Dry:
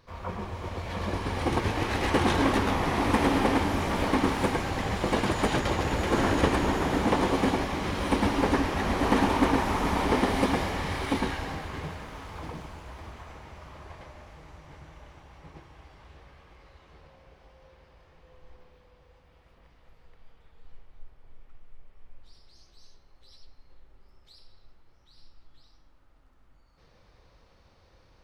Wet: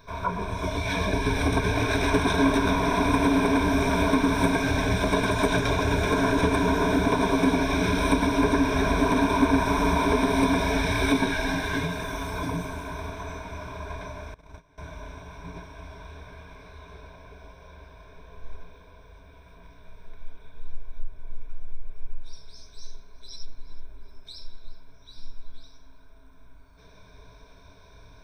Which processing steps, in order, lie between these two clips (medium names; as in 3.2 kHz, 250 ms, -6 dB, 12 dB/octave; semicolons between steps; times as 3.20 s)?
spectral noise reduction 7 dB; in parallel at 0 dB: gain riding within 4 dB; on the sum: band-stop 2.6 kHz, Q 19; compression 2.5:1, threshold -32 dBFS, peak gain reduction 13 dB; rippled EQ curve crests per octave 1.6, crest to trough 16 dB; on a send: tape echo 371 ms, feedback 83%, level -13 dB, low-pass 2.4 kHz; 14.34–14.78 s: on the sum: gate -40 dBFS, range -20 dB; trim +4 dB